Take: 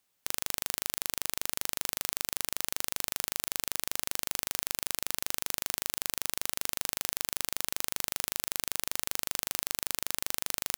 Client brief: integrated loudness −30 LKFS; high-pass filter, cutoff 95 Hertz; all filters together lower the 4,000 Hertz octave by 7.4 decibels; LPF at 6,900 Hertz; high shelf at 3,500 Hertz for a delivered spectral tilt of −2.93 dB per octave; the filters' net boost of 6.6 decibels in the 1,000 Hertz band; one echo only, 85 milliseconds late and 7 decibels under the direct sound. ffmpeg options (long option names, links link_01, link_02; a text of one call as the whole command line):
ffmpeg -i in.wav -af "highpass=95,lowpass=6900,equalizer=frequency=1000:width_type=o:gain=9,highshelf=frequency=3500:gain=-5,equalizer=frequency=4000:width_type=o:gain=-6,aecho=1:1:85:0.447,volume=8.5dB" out.wav